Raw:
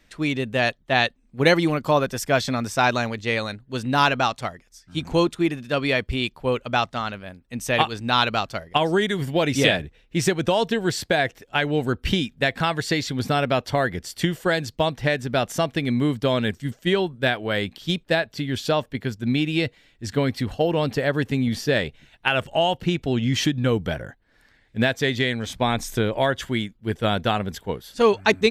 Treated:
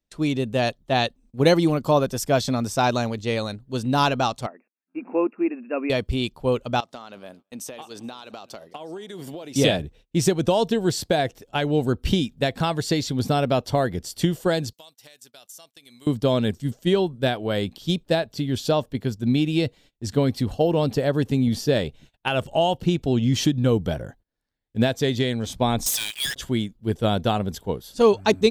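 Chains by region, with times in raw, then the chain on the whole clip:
0:04.46–0:05.90: linear-phase brick-wall band-pass 200–2,800 Hz + parametric band 600 Hz −3.5 dB 2.8 octaves
0:06.80–0:09.56: high-pass filter 270 Hz + downward compressor 16 to 1, threshold −32 dBFS + repeating echo 213 ms, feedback 39%, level −22 dB
0:14.73–0:16.07: first difference + downward compressor 4 to 1, threshold −42 dBFS
0:25.86–0:26.36: Butterworth high-pass 1,700 Hz 96 dB per octave + leveller curve on the samples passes 5
whole clip: noise gate −49 dBFS, range −24 dB; parametric band 1,900 Hz −11 dB 1.3 octaves; level +2 dB

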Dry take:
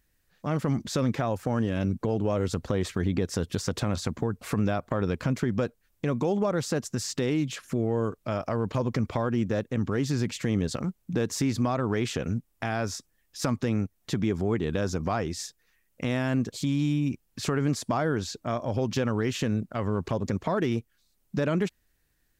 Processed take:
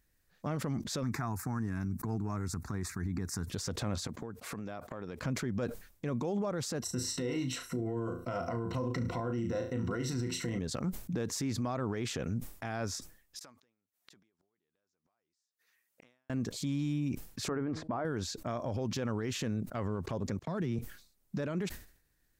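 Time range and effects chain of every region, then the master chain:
0:01.03–0:03.50: high-pass filter 48 Hz + high-shelf EQ 5,000 Hz +5 dB + phaser with its sweep stopped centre 1,300 Hz, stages 4
0:04.07–0:05.21: high-pass filter 190 Hz 6 dB per octave + downward compressor 4 to 1, threshold −35 dBFS
0:06.82–0:10.59: EQ curve with evenly spaced ripples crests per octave 2, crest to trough 14 dB + flutter between parallel walls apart 6 metres, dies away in 0.27 s
0:13.39–0:16.30: high-pass filter 820 Hz 6 dB per octave + downward compressor 3 to 1, threshold −47 dBFS + gate with flip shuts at −39 dBFS, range −35 dB
0:17.48–0:18.05: low-pass filter 1,600 Hz + parametric band 150 Hz −9 dB 0.42 octaves + hum removal 157.6 Hz, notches 6
0:20.39–0:20.79: noise gate −38 dBFS, range −57 dB + parametric band 150 Hz +9.5 dB 1.1 octaves + multiband upward and downward compressor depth 70%
whole clip: parametric band 2,900 Hz −3 dB 0.49 octaves; brickwall limiter −23.5 dBFS; level that may fall only so fast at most 110 dB per second; level −3 dB

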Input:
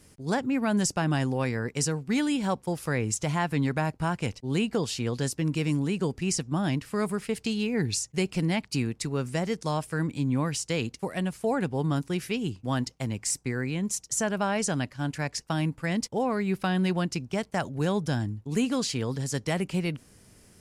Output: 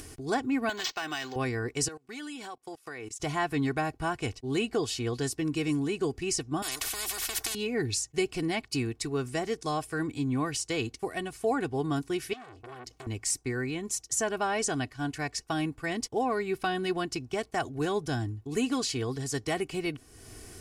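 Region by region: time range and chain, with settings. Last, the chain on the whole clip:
0:00.69–0:01.36: meter weighting curve ITU-R 468 + downward compressor 5 to 1, threshold −26 dBFS + linearly interpolated sample-rate reduction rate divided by 4×
0:01.88–0:03.20: high-pass filter 560 Hz 6 dB per octave + output level in coarse steps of 20 dB + expander for the loud parts, over −53 dBFS
0:06.62–0:07.55: high-shelf EQ 2,900 Hz +10 dB + every bin compressed towards the loudest bin 10 to 1
0:12.33–0:13.07: downward compressor 12 to 1, threshold −35 dBFS + saturating transformer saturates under 3,100 Hz
whole clip: comb filter 2.7 ms, depth 71%; upward compression, threshold −33 dBFS; level −2.5 dB

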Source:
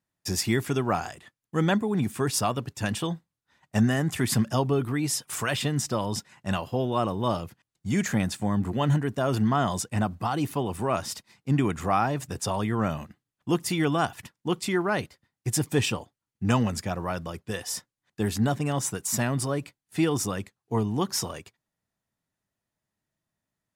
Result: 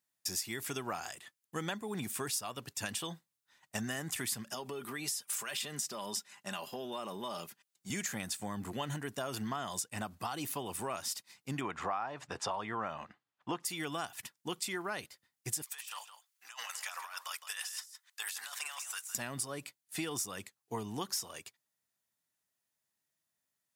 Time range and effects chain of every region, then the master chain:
0:04.51–0:07.90: high-pass filter 170 Hz + comb filter 5 ms, depth 40% + downward compressor, threshold −28 dBFS
0:11.61–0:13.65: low-pass filter 4,000 Hz + parametric band 920 Hz +10 dB 2 octaves
0:15.62–0:19.15: high-pass filter 1,000 Hz 24 dB per octave + compressor whose output falls as the input rises −43 dBFS + single-tap delay 162 ms −11.5 dB
whole clip: spectral tilt +3 dB per octave; downward compressor 6 to 1, threshold −29 dBFS; level −5 dB

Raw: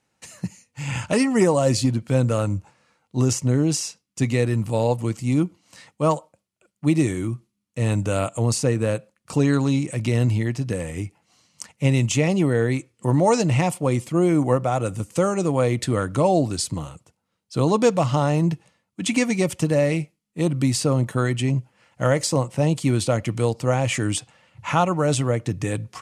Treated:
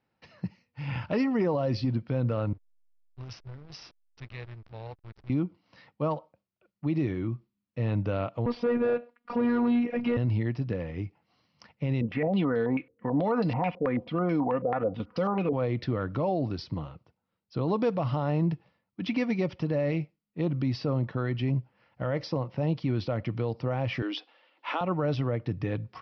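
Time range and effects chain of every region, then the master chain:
0:02.53–0:05.30: guitar amp tone stack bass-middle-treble 10-0-10 + slack as between gear wheels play −29.5 dBFS
0:08.46–0:10.17: phases set to zero 240 Hz + mid-hump overdrive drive 23 dB, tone 1,500 Hz, clips at −8.5 dBFS + high-frequency loss of the air 91 metres
0:12.01–0:15.53: comb filter 4.1 ms, depth 56% + low-pass on a step sequencer 9.2 Hz 470–4,900 Hz
0:24.02–0:24.81: Butterworth high-pass 270 Hz 48 dB per octave + parametric band 3,400 Hz +7.5 dB
whole clip: Butterworth low-pass 5,500 Hz 96 dB per octave; high-shelf EQ 3,500 Hz −11.5 dB; brickwall limiter −14 dBFS; level −5 dB

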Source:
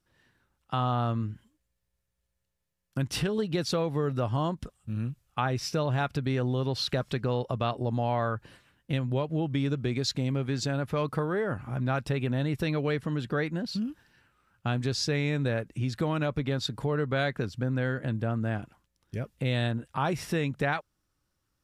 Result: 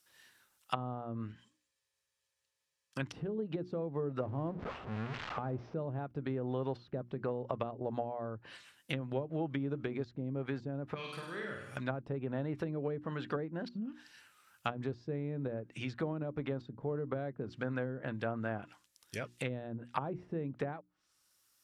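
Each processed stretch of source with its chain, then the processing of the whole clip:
0:01.32–0:03.00: high-frequency loss of the air 76 metres + notch comb filter 710 Hz
0:04.20–0:05.74: converter with a step at zero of −30.5 dBFS + linearly interpolated sample-rate reduction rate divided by 4×
0:10.94–0:11.77: parametric band 820 Hz −12.5 dB 2 octaves + tuned comb filter 68 Hz, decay 0.51 s + flutter between parallel walls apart 8.5 metres, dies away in 0.83 s
whole clip: spectral tilt +4 dB per octave; treble cut that deepens with the level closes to 390 Hz, closed at −28.5 dBFS; mains-hum notches 60/120/180/240/300/360 Hz; level +1 dB

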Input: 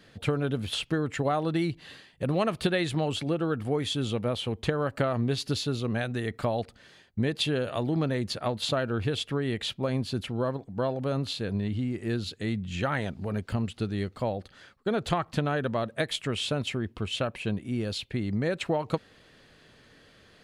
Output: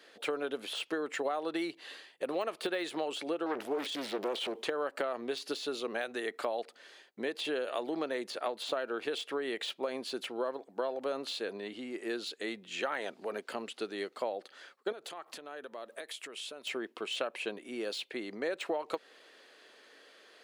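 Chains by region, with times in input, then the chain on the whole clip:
0:03.46–0:04.63: transient designer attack −1 dB, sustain +10 dB + highs frequency-modulated by the lows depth 0.7 ms
0:14.92–0:16.67: high-shelf EQ 8,000 Hz +10 dB + downward compressor 8 to 1, threshold −38 dBFS
whole clip: de-essing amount 95%; high-pass filter 350 Hz 24 dB per octave; downward compressor 5 to 1, threshold −30 dBFS

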